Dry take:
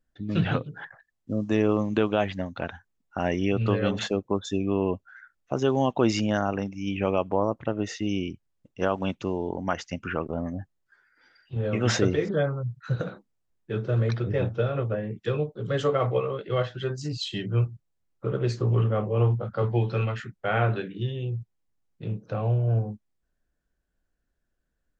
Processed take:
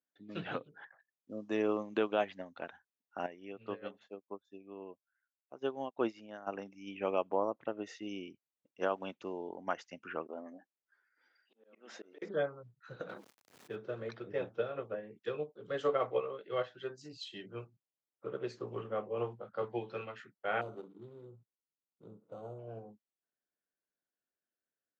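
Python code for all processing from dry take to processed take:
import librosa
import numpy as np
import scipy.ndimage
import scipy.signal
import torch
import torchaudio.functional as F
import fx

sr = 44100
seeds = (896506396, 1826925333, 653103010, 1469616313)

y = fx.chain(x, sr, fx.air_absorb(metres=70.0),
    fx.upward_expand(threshold_db=-35.0, expansion=2.5), at=(3.26, 6.47))
y = fx.chain(y, sr, fx.brickwall_highpass(low_hz=190.0),
    fx.auto_swell(attack_ms=685.0), at=(10.26, 12.22))
y = fx.chain(y, sr, fx.law_mismatch(coded='A'),
    fx.peak_eq(hz=110.0, db=7.5, octaves=0.59),
    fx.env_flatten(amount_pct=70), at=(13.09, 13.76))
y = fx.chain(y, sr, fx.median_filter(points=41),
    fx.brickwall_bandstop(low_hz=1500.0, high_hz=3500.0),
    fx.resample_linear(factor=6), at=(20.61, 22.59))
y = scipy.signal.sosfilt(scipy.signal.butter(2, 310.0, 'highpass', fs=sr, output='sos'), y)
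y = fx.high_shelf(y, sr, hz=6300.0, db=-8.0)
y = fx.upward_expand(y, sr, threshold_db=-35.0, expansion=1.5)
y = y * 10.0 ** (-5.0 / 20.0)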